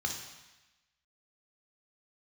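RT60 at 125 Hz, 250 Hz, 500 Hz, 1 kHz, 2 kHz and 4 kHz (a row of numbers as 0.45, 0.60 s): 1.0, 1.0, 0.95, 1.1, 1.2, 1.2 s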